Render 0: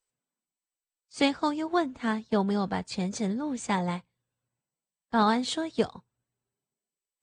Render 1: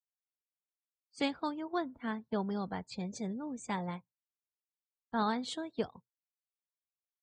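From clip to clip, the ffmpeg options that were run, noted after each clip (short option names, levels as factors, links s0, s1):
-af "afftdn=nr=29:nf=-45,volume=0.376"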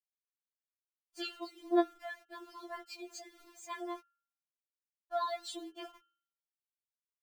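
-af "aeval=exprs='val(0)*gte(abs(val(0)),0.00266)':c=same,bandreject=f=106.5:t=h:w=4,bandreject=f=213:t=h:w=4,bandreject=f=319.5:t=h:w=4,bandreject=f=426:t=h:w=4,bandreject=f=532.5:t=h:w=4,bandreject=f=639:t=h:w=4,bandreject=f=745.5:t=h:w=4,bandreject=f=852:t=h:w=4,bandreject=f=958.5:t=h:w=4,bandreject=f=1065:t=h:w=4,bandreject=f=1171.5:t=h:w=4,bandreject=f=1278:t=h:w=4,bandreject=f=1384.5:t=h:w=4,bandreject=f=1491:t=h:w=4,bandreject=f=1597.5:t=h:w=4,bandreject=f=1704:t=h:w=4,bandreject=f=1810.5:t=h:w=4,bandreject=f=1917:t=h:w=4,bandreject=f=2023.5:t=h:w=4,bandreject=f=2130:t=h:w=4,bandreject=f=2236.5:t=h:w=4,bandreject=f=2343:t=h:w=4,bandreject=f=2449.5:t=h:w=4,bandreject=f=2556:t=h:w=4,bandreject=f=2662.5:t=h:w=4,bandreject=f=2769:t=h:w=4,bandreject=f=2875.5:t=h:w=4,bandreject=f=2982:t=h:w=4,bandreject=f=3088.5:t=h:w=4,bandreject=f=3195:t=h:w=4,bandreject=f=3301.5:t=h:w=4,bandreject=f=3408:t=h:w=4,bandreject=f=3514.5:t=h:w=4,bandreject=f=3621:t=h:w=4,afftfilt=real='re*4*eq(mod(b,16),0)':imag='im*4*eq(mod(b,16),0)':win_size=2048:overlap=0.75,volume=1.12"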